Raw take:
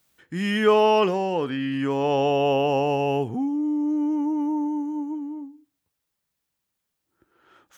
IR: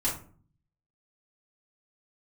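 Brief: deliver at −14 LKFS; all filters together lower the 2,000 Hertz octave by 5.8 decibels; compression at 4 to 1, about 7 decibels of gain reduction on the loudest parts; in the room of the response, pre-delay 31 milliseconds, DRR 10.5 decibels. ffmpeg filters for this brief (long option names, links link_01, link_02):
-filter_complex "[0:a]equalizer=frequency=2000:width_type=o:gain=-8,acompressor=threshold=-22dB:ratio=4,asplit=2[link_01][link_02];[1:a]atrim=start_sample=2205,adelay=31[link_03];[link_02][link_03]afir=irnorm=-1:irlink=0,volume=-17.5dB[link_04];[link_01][link_04]amix=inputs=2:normalize=0,volume=12.5dB"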